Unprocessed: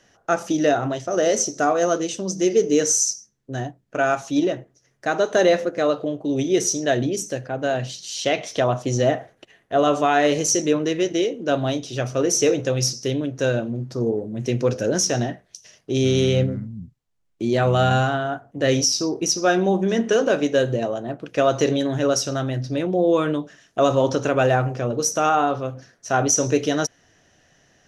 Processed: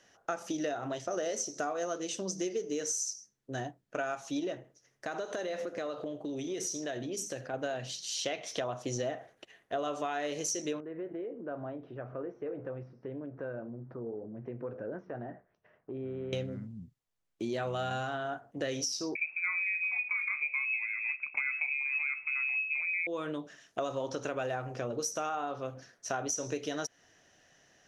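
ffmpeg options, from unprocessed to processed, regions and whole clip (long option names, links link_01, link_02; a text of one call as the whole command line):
ffmpeg -i in.wav -filter_complex "[0:a]asettb=1/sr,asplit=3[link_01][link_02][link_03];[link_01]atrim=end=4.564[link_04];[link_02]atrim=start=4.56:end=7.54,asetpts=PTS-STARTPTS,afade=type=in:duration=0.004:curve=qsin,afade=type=out:start_time=2.976:duration=0.004:curve=qsin,acompressor=threshold=-26dB:ratio=5:attack=3.2:release=140:knee=1:detection=peak,aecho=1:1:83:0.141,atrim=end_sample=131418[link_05];[link_03]atrim=start=7.536[link_06];[link_04][link_05]acrossfade=duration=0.004:curve1=hsin:curve2=qsin[link_07];[link_07][link_06]acrossfade=duration=0.004:curve1=qsin:curve2=hsin,asettb=1/sr,asplit=3[link_08][link_09][link_10];[link_08]atrim=end=10.804[link_11];[link_09]atrim=start=10.8:end=16.33,asetpts=PTS-STARTPTS,afade=type=in:duration=0.004:curve=qsin,afade=type=out:start_time=5.526:duration=0.004:curve=qsin,acompressor=threshold=-33dB:ratio=2.5:attack=3.2:release=140:knee=1:detection=peak,lowpass=frequency=1600:width=0.5412,lowpass=frequency=1600:width=1.3066[link_12];[link_10]atrim=start=16.326[link_13];[link_11][link_12]acrossfade=duration=0.004:curve1=hsin:curve2=qsin[link_14];[link_14][link_13]acrossfade=duration=0.004:curve1=qsin:curve2=hsin,asettb=1/sr,asplit=3[link_15][link_16][link_17];[link_15]atrim=end=19.154[link_18];[link_16]atrim=start=19.15:end=23.07,asetpts=PTS-STARTPTS,afade=type=in:duration=0.004:curve=qsin,afade=type=out:start_time=3.916:duration=0.004:curve=qsin,aemphasis=mode=reproduction:type=riaa,lowpass=frequency=2300:width_type=q:width=0.5098,lowpass=frequency=2300:width_type=q:width=0.6013,lowpass=frequency=2300:width_type=q:width=0.9,lowpass=frequency=2300:width_type=q:width=2.563,afreqshift=-2700[link_19];[link_17]atrim=start=23.066[link_20];[link_18][link_19]acrossfade=duration=0.004:curve1=hsin:curve2=qsin[link_21];[link_21][link_20]acrossfade=duration=0.004:curve1=qsin:curve2=hsin,lowshelf=frequency=240:gain=-8.5,acompressor=threshold=-27dB:ratio=6,volume=-4.5dB" out.wav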